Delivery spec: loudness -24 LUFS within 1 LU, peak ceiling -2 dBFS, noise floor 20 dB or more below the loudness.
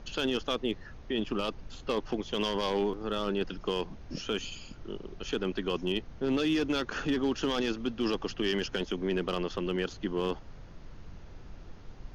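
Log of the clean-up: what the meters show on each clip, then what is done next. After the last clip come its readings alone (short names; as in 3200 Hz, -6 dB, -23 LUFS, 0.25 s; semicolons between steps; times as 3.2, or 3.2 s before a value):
clipped 0.3%; flat tops at -21.0 dBFS; noise floor -49 dBFS; noise floor target -53 dBFS; loudness -32.5 LUFS; peak -21.0 dBFS; loudness target -24.0 LUFS
-> clip repair -21 dBFS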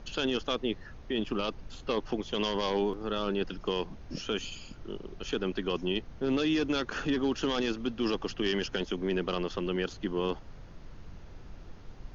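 clipped 0.0%; noise floor -49 dBFS; noise floor target -52 dBFS
-> noise print and reduce 6 dB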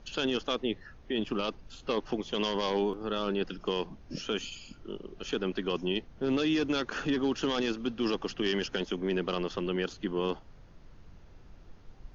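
noise floor -54 dBFS; loudness -32.0 LUFS; peak -16.0 dBFS; loudness target -24.0 LUFS
-> gain +8 dB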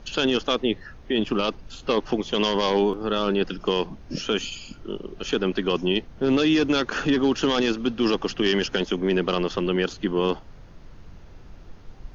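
loudness -24.0 LUFS; peak -8.0 dBFS; noise floor -46 dBFS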